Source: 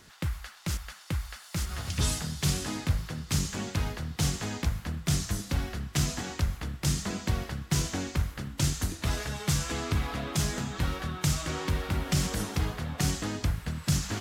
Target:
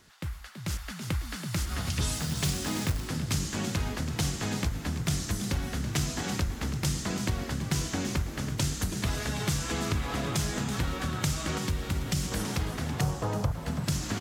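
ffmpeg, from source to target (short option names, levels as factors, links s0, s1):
-filter_complex "[0:a]asettb=1/sr,asplit=3[s0][s1][s2];[s0]atrim=end=13.014[s3];[s1]atrim=start=13.01:end=13.52,asetpts=PTS-STARTPTS,afade=t=in:d=0.004:c=qsin,afade=t=out:st=0.506:d=0.004:c=qsin,equalizer=f=125:t=o:w=1:g=12,equalizer=f=250:t=o:w=1:g=-11,equalizer=f=500:t=o:w=1:g=11,equalizer=f=1000:t=o:w=1:g=10,equalizer=f=2000:t=o:w=1:g=-7,equalizer=f=4000:t=o:w=1:g=-5,equalizer=f=8000:t=o:w=1:g=-4[s4];[s2]atrim=start=13.516[s5];[s3][s4]acrossfade=d=0.004:c1=hsin:c2=qsin[s6];[s6][s5]acrossfade=d=0.004:c1=qsin:c2=hsin,asplit=7[s7][s8][s9][s10][s11][s12][s13];[s8]adelay=329,afreqshift=56,volume=0.266[s14];[s9]adelay=658,afreqshift=112,volume=0.146[s15];[s10]adelay=987,afreqshift=168,volume=0.0804[s16];[s11]adelay=1316,afreqshift=224,volume=0.0442[s17];[s12]adelay=1645,afreqshift=280,volume=0.0243[s18];[s13]adelay=1974,afreqshift=336,volume=0.0133[s19];[s7][s14][s15][s16][s17][s18][s19]amix=inputs=7:normalize=0,dynaudnorm=f=230:g=7:m=2.99,asettb=1/sr,asplit=3[s20][s21][s22];[s20]atrim=end=11.584[s23];[s21]atrim=start=11.58:end=12.32,asetpts=PTS-STARTPTS,afade=t=in:d=0.004:c=qsin,afade=t=out:st=0.736:d=0.004:c=qsin,equalizer=f=920:w=0.34:g=-6[s24];[s22]atrim=start=12.316[s25];[s23][s24]acrossfade=d=0.004:c1=hsin:c2=qsin[s26];[s26][s25]acrossfade=d=0.004:c1=qsin:c2=hsin,acompressor=threshold=0.0631:ratio=2.5,asettb=1/sr,asplit=3[s27][s28][s29];[s27]atrim=end=2.144[s30];[s28]atrim=start=2.14:end=3.08,asetpts=PTS-STARTPTS,afade=t=in:d=0.004:c=qsin,afade=t=out:st=0.936:d=0.004:c=qsin,acrusher=bits=3:mode=log:mix=0:aa=0.000001[s31];[s29]atrim=start=3.076[s32];[s30][s31]acrossfade=d=0.004:c1=hsin:c2=qsin[s33];[s33][s32]acrossfade=d=0.004:c1=qsin:c2=hsin,volume=0.596"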